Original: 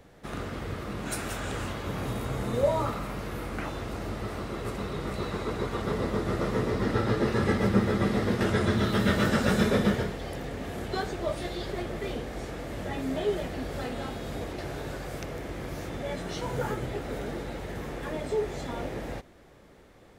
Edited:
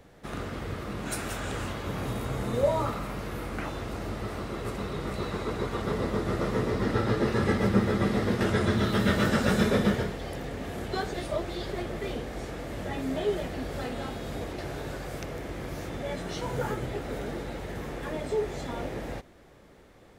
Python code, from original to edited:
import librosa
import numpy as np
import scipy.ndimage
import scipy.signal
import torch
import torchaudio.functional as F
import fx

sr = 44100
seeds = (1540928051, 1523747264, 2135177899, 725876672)

y = fx.edit(x, sr, fx.reverse_span(start_s=11.14, length_s=0.36), tone=tone)